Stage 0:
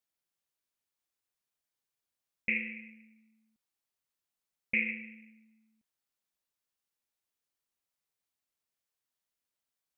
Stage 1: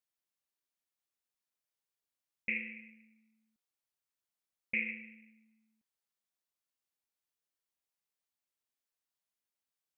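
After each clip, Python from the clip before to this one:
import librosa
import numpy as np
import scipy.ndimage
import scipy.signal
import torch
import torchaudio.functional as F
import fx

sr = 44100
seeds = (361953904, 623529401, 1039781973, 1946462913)

y = fx.low_shelf(x, sr, hz=160.0, db=-4.0)
y = y * 10.0 ** (-4.0 / 20.0)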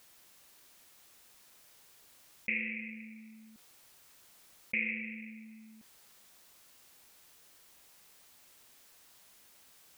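y = fx.env_flatten(x, sr, amount_pct=50)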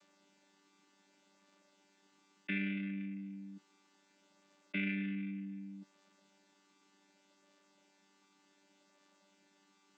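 y = fx.chord_vocoder(x, sr, chord='bare fifth', root=55)
y = y * 10.0 ** (1.0 / 20.0)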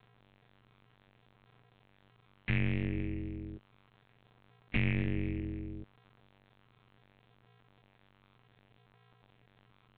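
y = fx.lpc_vocoder(x, sr, seeds[0], excitation='pitch_kept', order=8)
y = y * np.sin(2.0 * np.pi * 120.0 * np.arange(len(y)) / sr)
y = y * 10.0 ** (9.0 / 20.0)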